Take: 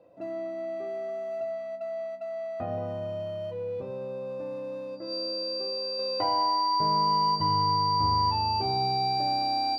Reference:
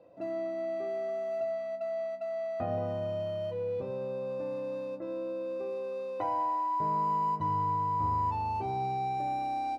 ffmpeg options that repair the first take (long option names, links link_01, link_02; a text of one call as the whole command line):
ffmpeg -i in.wav -af "bandreject=frequency=4700:width=30,asetnsamples=nb_out_samples=441:pad=0,asendcmd='5.99 volume volume -4.5dB',volume=0dB" out.wav